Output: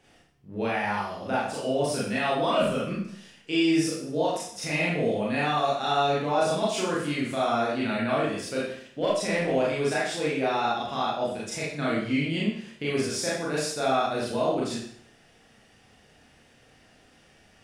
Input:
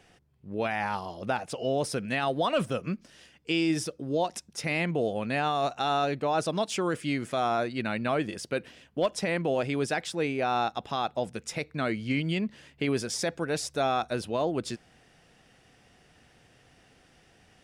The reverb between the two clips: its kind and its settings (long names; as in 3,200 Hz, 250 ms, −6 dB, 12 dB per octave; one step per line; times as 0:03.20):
four-comb reverb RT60 0.6 s, combs from 27 ms, DRR −7 dB
level −5 dB